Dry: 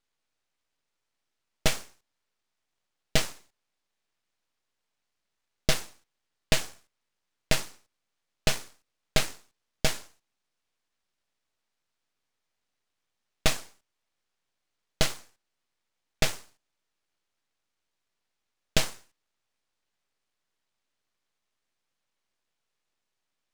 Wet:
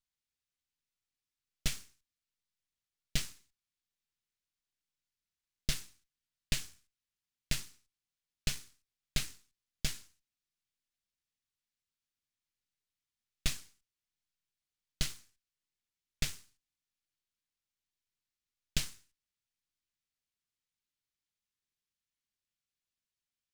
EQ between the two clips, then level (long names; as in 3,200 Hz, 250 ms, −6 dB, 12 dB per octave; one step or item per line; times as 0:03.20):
guitar amp tone stack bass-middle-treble 6-0-2
+7.5 dB